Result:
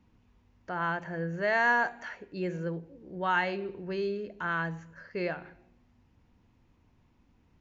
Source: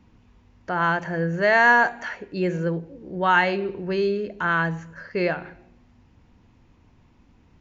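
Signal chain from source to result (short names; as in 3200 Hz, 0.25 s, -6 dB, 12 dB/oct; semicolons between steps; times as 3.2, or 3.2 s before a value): 0.77–1.48 dynamic EQ 5500 Hz, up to -5 dB, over -47 dBFS, Q 1.5; gain -9 dB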